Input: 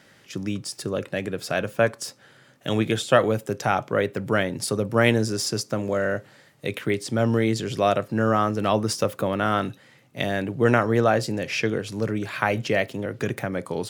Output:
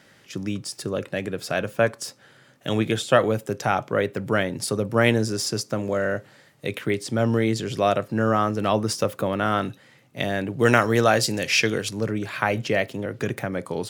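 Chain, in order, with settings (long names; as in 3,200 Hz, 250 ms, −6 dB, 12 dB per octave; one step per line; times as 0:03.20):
0:10.59–0:11.89: high-shelf EQ 2,200 Hz +11.5 dB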